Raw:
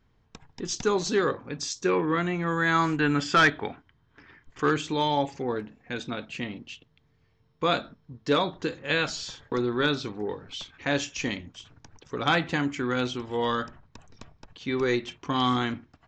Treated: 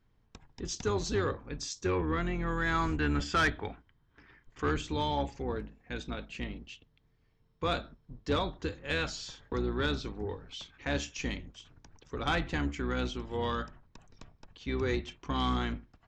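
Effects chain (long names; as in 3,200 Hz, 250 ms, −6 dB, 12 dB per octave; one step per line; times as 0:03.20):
sub-octave generator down 2 octaves, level +1 dB
soft clipping −13.5 dBFS, distortion −21 dB
level −6 dB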